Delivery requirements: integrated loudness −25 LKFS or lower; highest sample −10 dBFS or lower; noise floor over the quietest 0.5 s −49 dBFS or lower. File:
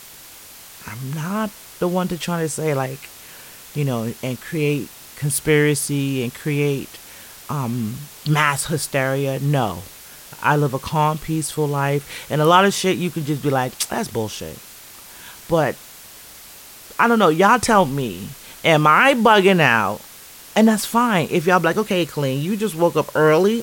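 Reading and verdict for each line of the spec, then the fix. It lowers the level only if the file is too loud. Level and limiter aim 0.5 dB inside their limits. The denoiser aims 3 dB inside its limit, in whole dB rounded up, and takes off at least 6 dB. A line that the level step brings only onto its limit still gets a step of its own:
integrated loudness −19.0 LKFS: out of spec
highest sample −2.5 dBFS: out of spec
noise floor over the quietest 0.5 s −41 dBFS: out of spec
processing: broadband denoise 6 dB, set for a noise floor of −41 dBFS
level −6.5 dB
brickwall limiter −10.5 dBFS

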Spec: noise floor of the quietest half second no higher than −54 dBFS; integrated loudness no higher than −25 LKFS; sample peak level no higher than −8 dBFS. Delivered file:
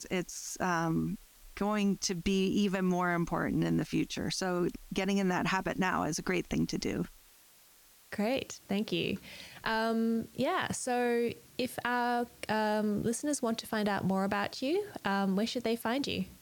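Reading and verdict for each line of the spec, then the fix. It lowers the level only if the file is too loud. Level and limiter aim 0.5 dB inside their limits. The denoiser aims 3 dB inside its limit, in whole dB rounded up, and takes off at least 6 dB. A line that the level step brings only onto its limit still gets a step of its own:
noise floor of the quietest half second −60 dBFS: in spec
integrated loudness −32.5 LKFS: in spec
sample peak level −17.0 dBFS: in spec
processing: no processing needed

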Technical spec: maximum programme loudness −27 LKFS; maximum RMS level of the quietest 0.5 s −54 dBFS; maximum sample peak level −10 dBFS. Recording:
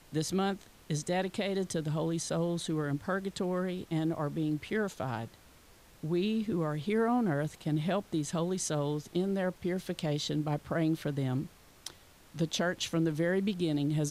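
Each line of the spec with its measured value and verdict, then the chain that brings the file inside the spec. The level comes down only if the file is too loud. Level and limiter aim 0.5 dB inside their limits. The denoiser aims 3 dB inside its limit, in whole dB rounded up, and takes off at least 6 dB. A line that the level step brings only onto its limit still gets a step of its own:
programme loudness −32.5 LKFS: in spec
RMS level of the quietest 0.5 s −58 dBFS: in spec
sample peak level −19.5 dBFS: in spec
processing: no processing needed

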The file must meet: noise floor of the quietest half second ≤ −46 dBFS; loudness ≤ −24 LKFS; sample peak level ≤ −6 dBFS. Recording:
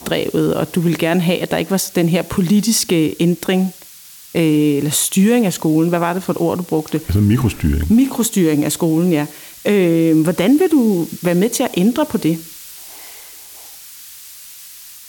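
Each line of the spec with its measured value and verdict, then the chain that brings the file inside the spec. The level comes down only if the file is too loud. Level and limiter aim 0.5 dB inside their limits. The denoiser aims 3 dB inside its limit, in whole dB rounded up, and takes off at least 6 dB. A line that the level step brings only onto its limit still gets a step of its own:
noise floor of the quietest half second −40 dBFS: out of spec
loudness −16.0 LKFS: out of spec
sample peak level −5.0 dBFS: out of spec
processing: level −8.5 dB

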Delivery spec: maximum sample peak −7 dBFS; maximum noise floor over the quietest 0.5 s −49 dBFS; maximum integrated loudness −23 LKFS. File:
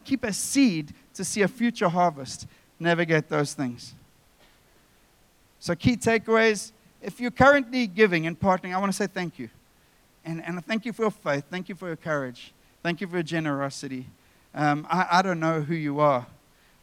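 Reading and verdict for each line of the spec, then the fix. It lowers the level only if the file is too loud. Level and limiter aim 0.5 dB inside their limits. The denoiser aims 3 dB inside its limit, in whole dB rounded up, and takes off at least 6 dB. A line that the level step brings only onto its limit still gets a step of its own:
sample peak −4.5 dBFS: out of spec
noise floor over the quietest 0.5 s −61 dBFS: in spec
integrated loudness −25.0 LKFS: in spec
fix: brickwall limiter −7.5 dBFS

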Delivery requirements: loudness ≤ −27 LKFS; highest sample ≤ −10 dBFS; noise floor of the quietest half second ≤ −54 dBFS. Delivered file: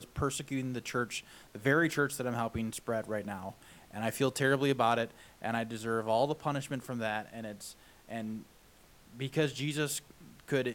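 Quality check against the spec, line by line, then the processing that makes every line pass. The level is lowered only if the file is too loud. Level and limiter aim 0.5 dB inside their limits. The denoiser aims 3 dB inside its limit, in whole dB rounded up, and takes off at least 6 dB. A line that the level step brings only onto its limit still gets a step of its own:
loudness −33.5 LKFS: in spec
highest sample −15.0 dBFS: in spec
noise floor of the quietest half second −60 dBFS: in spec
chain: no processing needed

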